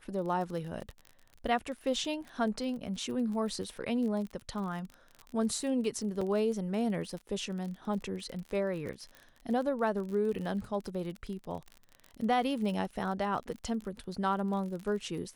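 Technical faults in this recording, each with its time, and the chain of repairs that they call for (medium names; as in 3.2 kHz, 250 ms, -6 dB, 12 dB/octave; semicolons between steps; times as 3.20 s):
crackle 39 per s -38 dBFS
6.21 s: dropout 4.4 ms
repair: de-click; interpolate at 6.21 s, 4.4 ms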